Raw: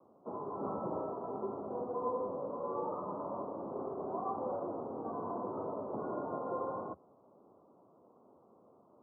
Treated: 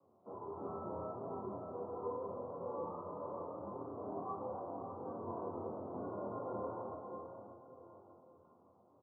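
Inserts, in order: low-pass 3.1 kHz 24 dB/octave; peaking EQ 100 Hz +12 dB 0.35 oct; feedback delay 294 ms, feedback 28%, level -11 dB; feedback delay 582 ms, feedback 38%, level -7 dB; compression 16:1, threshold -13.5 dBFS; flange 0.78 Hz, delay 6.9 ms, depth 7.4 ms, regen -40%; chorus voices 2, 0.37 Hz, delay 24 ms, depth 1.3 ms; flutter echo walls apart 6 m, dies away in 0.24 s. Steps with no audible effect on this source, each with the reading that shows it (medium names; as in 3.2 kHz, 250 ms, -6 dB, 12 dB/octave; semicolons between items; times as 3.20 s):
low-pass 3.1 kHz: input has nothing above 1.5 kHz; compression, threshold -13.5 dBFS: peak at its input -23.0 dBFS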